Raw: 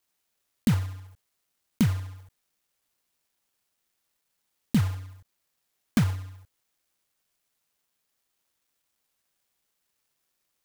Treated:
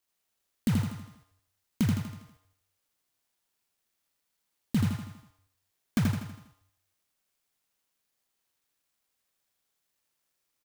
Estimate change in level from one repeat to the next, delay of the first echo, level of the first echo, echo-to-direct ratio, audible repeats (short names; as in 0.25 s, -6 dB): -6.5 dB, 81 ms, -3.0 dB, -2.0 dB, 6